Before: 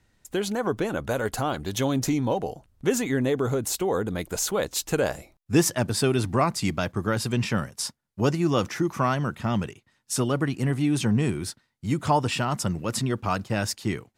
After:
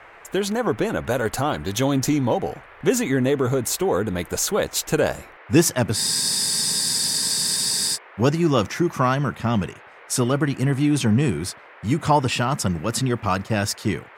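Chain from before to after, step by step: band noise 380–2200 Hz -50 dBFS; spectral freeze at 5.98 s, 1.97 s; trim +4 dB

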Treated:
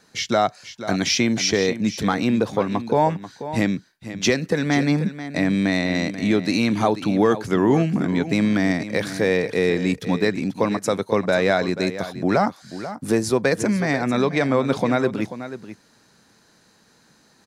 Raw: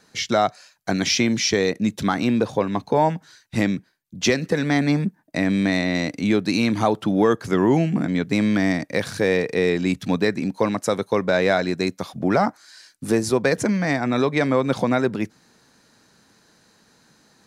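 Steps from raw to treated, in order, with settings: delay 487 ms -12.5 dB

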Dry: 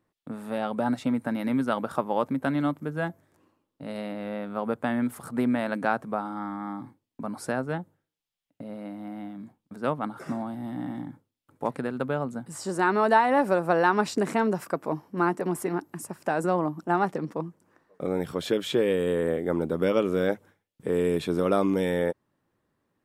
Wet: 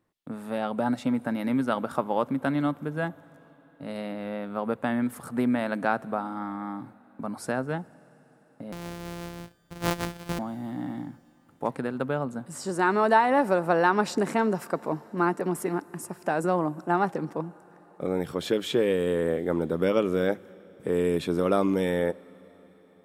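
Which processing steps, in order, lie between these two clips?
8.72–10.39 s: sorted samples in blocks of 256 samples; on a send: reverberation RT60 5.2 s, pre-delay 47 ms, DRR 22 dB

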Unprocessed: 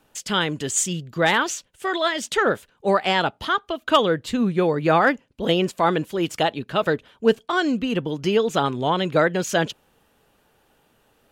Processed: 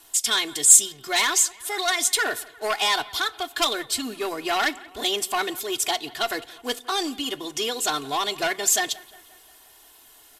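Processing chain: companding laws mixed up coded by mu; elliptic low-pass 12 kHz, stop band 50 dB; speed mistake 44.1 kHz file played as 48 kHz; peaking EQ 880 Hz +6.5 dB 0.46 oct; comb 2.8 ms, depth 94%; in parallel at -9 dB: sine folder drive 9 dB, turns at -1 dBFS; on the sum: pre-emphasis filter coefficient 0.9; bucket-brigade echo 176 ms, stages 4096, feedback 55%, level -21 dB; on a send at -17.5 dB: reverberation RT60 0.55 s, pre-delay 5 ms

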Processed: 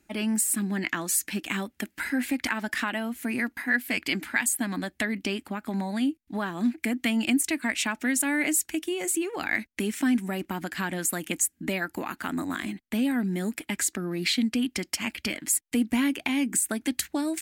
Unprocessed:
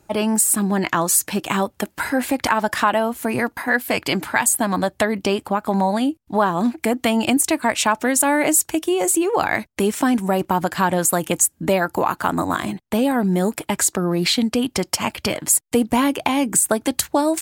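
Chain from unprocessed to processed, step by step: ten-band graphic EQ 125 Hz -11 dB, 250 Hz +8 dB, 500 Hz -8 dB, 1 kHz -9 dB, 2 kHz +8 dB; trim -8.5 dB

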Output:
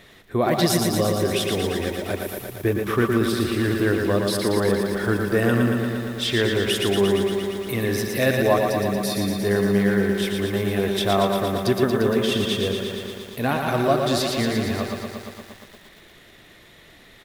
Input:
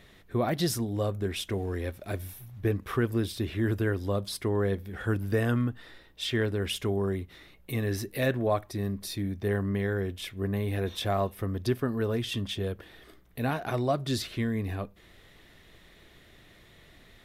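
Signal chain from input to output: bass shelf 130 Hz -9.5 dB; echo from a far wall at 19 m, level -10 dB; bit-crushed delay 116 ms, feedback 80%, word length 9-bit, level -5 dB; trim +7.5 dB

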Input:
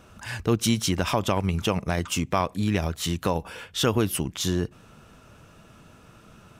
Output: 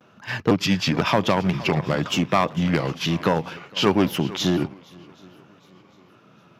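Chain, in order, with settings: pitch shift switched off and on -3 st, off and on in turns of 508 ms; boxcar filter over 5 samples; one-sided clip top -19.5 dBFS; on a send: shuffle delay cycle 763 ms, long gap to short 1.5:1, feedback 39%, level -17.5 dB; on the sum: vibrato 0.57 Hz 43 cents; high-pass 130 Hz 24 dB/octave; gate -38 dBFS, range -8 dB; trim +7 dB

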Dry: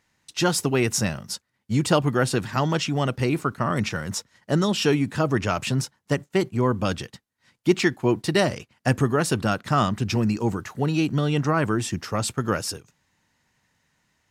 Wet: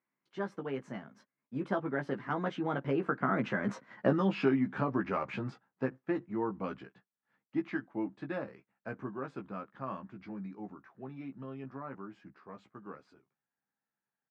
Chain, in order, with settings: Doppler pass-by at 3.99 s, 36 m/s, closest 8.5 m; compression 4:1, threshold -35 dBFS, peak gain reduction 14 dB; Chebyshev band-pass 210–1600 Hz, order 2; doubling 15 ms -5 dB; trim +8.5 dB

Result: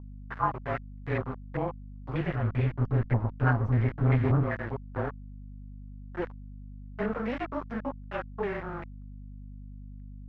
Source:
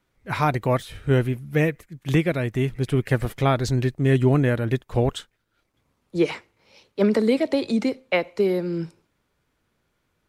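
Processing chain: frequency axis rescaled in octaves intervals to 110%; 2.20–4.43 s: peaking EQ 99 Hz +12 dB 2 oct; small samples zeroed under -25.5 dBFS; valve stage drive 13 dB, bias 0.75; hum 50 Hz, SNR 12 dB; step-sequenced low-pass 5.1 Hz 990–2100 Hz; trim -6.5 dB

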